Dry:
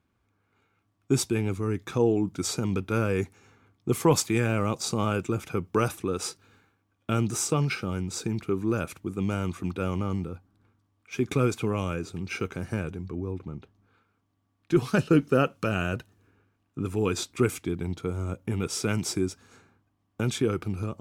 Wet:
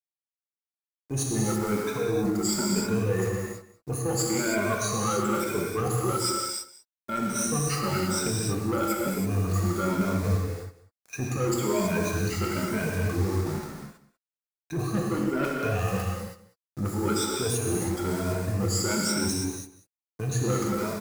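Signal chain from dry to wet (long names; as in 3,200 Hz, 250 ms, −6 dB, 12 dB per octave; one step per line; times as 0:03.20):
rippled gain that drifts along the octave scale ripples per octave 1.6, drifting +1.1 Hz, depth 23 dB
reverb reduction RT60 1.7 s
mains-hum notches 60/120/180/240/300/360/420/480/540/600 Hz
bit reduction 7 bits
reversed playback
downward compressor 12 to 1, threshold −28 dBFS, peak gain reduction 17.5 dB
reversed playback
noise gate with hold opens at −36 dBFS
upward compression, threshold −47 dBFS
parametric band 3,000 Hz −13 dB 0.56 octaves
soft clipping −28 dBFS, distortion −15 dB
on a send: single-tap delay 192 ms −18 dB
on the sum: reverb whose tail is shaped and stops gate 350 ms flat, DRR −2.5 dB
level +4.5 dB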